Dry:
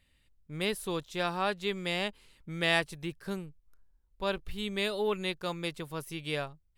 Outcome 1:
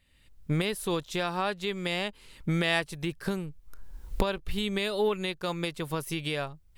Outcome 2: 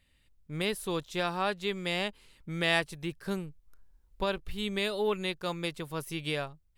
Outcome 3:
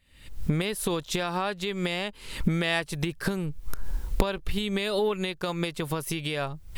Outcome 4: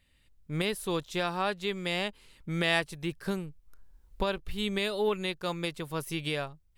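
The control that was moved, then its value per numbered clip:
recorder AGC, rising by: 35 dB/s, 5.3 dB/s, 88 dB/s, 13 dB/s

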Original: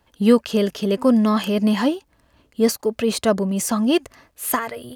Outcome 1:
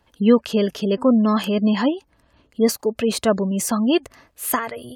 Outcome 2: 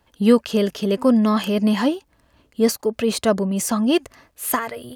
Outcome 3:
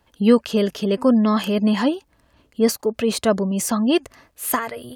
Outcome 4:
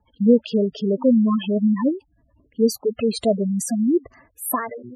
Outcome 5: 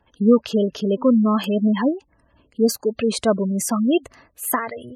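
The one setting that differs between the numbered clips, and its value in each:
spectral gate, under each frame's peak: -35 dB, -60 dB, -45 dB, -10 dB, -20 dB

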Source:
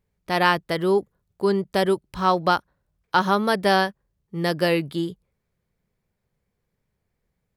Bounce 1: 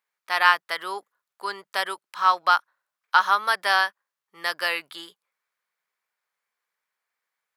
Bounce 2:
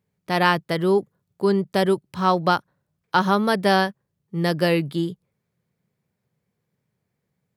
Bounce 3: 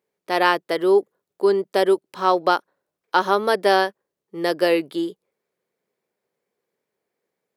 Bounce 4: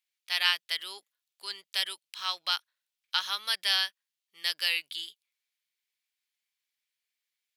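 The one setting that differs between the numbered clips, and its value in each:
resonant high-pass, frequency: 1.2 kHz, 130 Hz, 380 Hz, 3 kHz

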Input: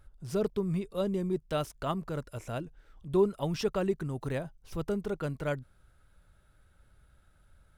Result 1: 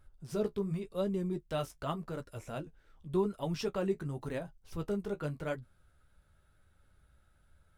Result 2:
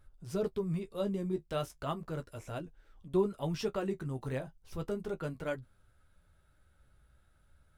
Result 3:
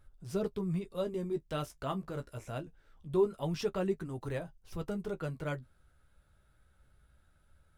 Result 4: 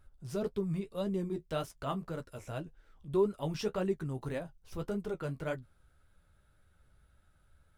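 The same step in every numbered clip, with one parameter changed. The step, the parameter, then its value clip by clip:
flange, rate: 0.89 Hz, 0.35 Hz, 0.23 Hz, 1.8 Hz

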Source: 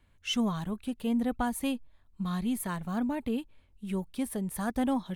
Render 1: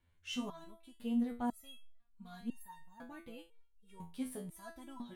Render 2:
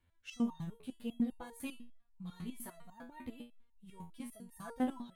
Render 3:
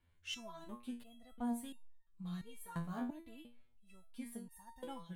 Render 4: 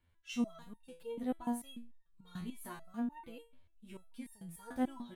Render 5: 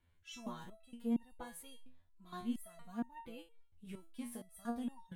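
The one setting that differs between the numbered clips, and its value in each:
resonator arpeggio, rate: 2 Hz, 10 Hz, 2.9 Hz, 6.8 Hz, 4.3 Hz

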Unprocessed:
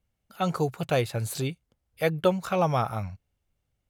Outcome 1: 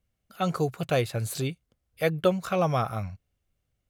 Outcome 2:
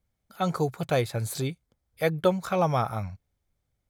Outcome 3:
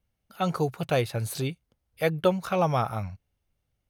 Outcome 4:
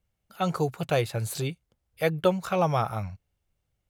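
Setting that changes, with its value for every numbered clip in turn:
band-stop, frequency: 880 Hz, 2.8 kHz, 7.4 kHz, 250 Hz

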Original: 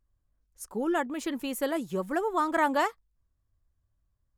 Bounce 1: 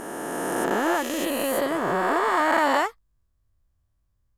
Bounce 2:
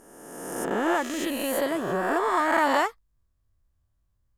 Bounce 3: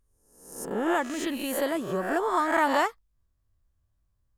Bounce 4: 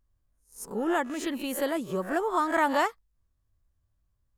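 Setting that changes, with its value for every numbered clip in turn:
reverse spectral sustain, rising 60 dB in: 3.21 s, 1.5 s, 0.69 s, 0.3 s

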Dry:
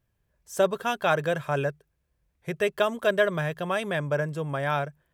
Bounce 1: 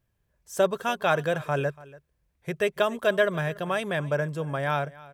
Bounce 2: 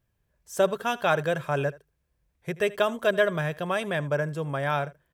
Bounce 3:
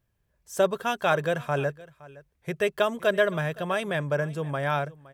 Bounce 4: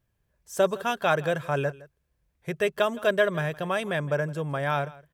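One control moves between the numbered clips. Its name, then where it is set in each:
delay, time: 286 ms, 79 ms, 516 ms, 164 ms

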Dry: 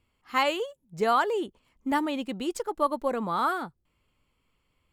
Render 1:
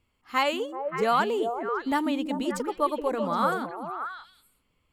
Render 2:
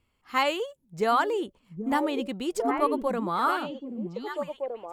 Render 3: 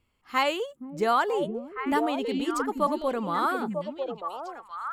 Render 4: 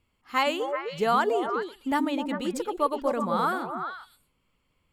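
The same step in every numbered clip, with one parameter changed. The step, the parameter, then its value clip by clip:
repeats whose band climbs or falls, time: 192 ms, 782 ms, 473 ms, 128 ms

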